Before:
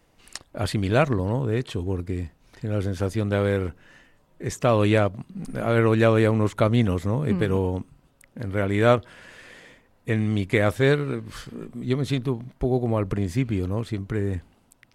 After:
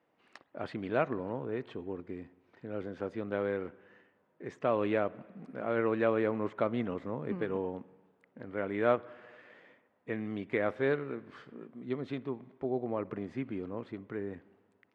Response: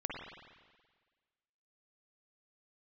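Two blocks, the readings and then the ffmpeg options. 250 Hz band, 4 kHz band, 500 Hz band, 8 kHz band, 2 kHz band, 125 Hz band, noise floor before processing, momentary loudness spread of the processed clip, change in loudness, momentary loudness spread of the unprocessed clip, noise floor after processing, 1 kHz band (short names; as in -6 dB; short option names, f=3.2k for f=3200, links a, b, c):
-11.0 dB, -17.5 dB, -8.5 dB, under -30 dB, -10.5 dB, -20.5 dB, -62 dBFS, 17 LU, -10.5 dB, 14 LU, -73 dBFS, -8.5 dB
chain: -filter_complex "[0:a]highpass=240,lowpass=2.1k,asplit=2[a][b];[1:a]atrim=start_sample=2205,asetrate=42336,aresample=44100[c];[b][c]afir=irnorm=-1:irlink=0,volume=-20dB[d];[a][d]amix=inputs=2:normalize=0,volume=-9dB"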